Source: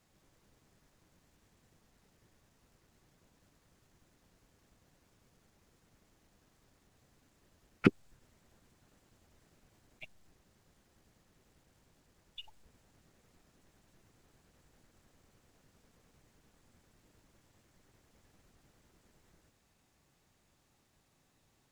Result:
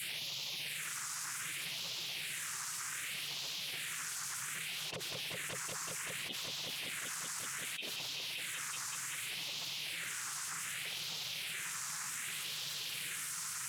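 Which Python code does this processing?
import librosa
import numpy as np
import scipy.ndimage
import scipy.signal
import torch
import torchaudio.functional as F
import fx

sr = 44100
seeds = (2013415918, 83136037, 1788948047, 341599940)

y = scipy.signal.sosfilt(scipy.signal.ellip(4, 1.0, 80, 210.0, 'highpass', fs=sr, output='sos'), x)
y = fx.spec_gate(y, sr, threshold_db=-15, keep='weak')
y = fx.high_shelf(y, sr, hz=4000.0, db=9.0)
y = fx.rider(y, sr, range_db=5, speed_s=0.5)
y = fx.stretch_grains(y, sr, factor=0.63, grain_ms=174.0)
y = fx.phaser_stages(y, sr, stages=4, low_hz=530.0, high_hz=1600.0, hz=0.65, feedback_pct=25)
y = fx.fold_sine(y, sr, drive_db=16, ceiling_db=-31.0)
y = fx.air_absorb(y, sr, metres=62.0)
y = fx.echo_heads(y, sr, ms=190, heads='all three', feedback_pct=73, wet_db=-20)
y = fx.env_flatten(y, sr, amount_pct=100)
y = y * librosa.db_to_amplitude(-5.0)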